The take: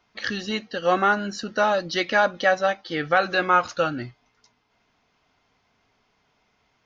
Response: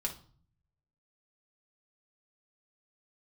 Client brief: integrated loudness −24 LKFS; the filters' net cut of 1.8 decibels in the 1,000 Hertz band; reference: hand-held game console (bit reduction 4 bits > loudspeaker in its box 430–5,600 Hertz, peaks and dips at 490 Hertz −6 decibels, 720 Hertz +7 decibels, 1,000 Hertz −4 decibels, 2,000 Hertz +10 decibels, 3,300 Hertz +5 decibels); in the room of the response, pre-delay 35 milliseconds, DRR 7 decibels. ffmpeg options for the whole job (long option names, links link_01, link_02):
-filter_complex "[0:a]equalizer=frequency=1000:width_type=o:gain=-6,asplit=2[link_01][link_02];[1:a]atrim=start_sample=2205,adelay=35[link_03];[link_02][link_03]afir=irnorm=-1:irlink=0,volume=-9dB[link_04];[link_01][link_04]amix=inputs=2:normalize=0,acrusher=bits=3:mix=0:aa=0.000001,highpass=430,equalizer=frequency=490:width_type=q:width=4:gain=-6,equalizer=frequency=720:width_type=q:width=4:gain=7,equalizer=frequency=1000:width_type=q:width=4:gain=-4,equalizer=frequency=2000:width_type=q:width=4:gain=10,equalizer=frequency=3300:width_type=q:width=4:gain=5,lowpass=frequency=5600:width=0.5412,lowpass=frequency=5600:width=1.3066,volume=-2.5dB"